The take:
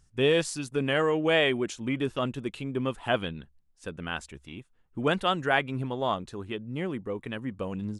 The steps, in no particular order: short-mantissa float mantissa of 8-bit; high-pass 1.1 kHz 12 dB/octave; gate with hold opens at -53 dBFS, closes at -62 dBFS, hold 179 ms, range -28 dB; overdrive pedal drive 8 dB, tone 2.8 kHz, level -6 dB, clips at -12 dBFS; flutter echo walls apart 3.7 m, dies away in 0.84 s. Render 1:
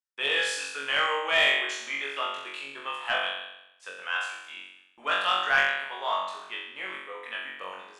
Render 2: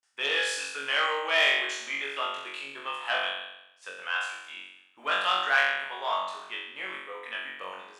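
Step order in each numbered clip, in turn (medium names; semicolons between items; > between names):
high-pass > gate with hold > flutter echo > overdrive pedal > short-mantissa float; flutter echo > gate with hold > overdrive pedal > short-mantissa float > high-pass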